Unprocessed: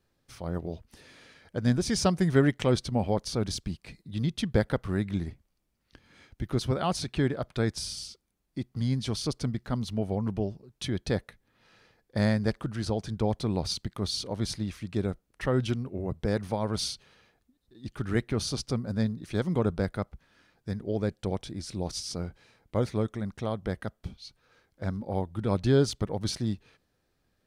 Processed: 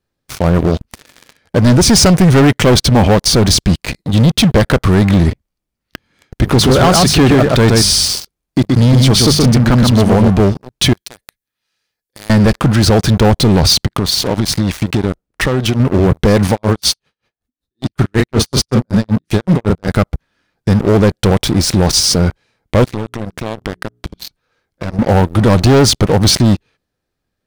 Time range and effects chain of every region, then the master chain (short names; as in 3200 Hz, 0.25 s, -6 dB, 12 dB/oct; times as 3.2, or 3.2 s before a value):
6.43–10.28 notches 50/100/150/200 Hz + echo 0.125 s -4.5 dB
10.93–12.3 pre-emphasis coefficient 0.9 + compressor 3:1, threshold -51 dBFS
13.86–15.8 compressor 10:1, threshold -36 dBFS + mismatched tape noise reduction decoder only
16.51–19.95 doubler 37 ms -9 dB + dB-linear tremolo 5.3 Hz, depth 31 dB
22.84–24.99 notches 60/120/180/240/300/360/420 Hz + compressor 4:1, threshold -45 dBFS
whole clip: sample leveller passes 5; limiter -13 dBFS; gain +8.5 dB